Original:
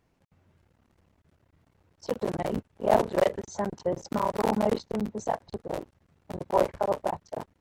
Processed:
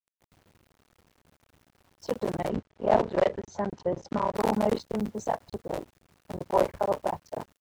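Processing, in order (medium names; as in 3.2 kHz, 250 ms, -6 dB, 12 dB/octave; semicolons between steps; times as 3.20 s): bit crusher 10-bit; 2.49–4.35 s: distance through air 110 m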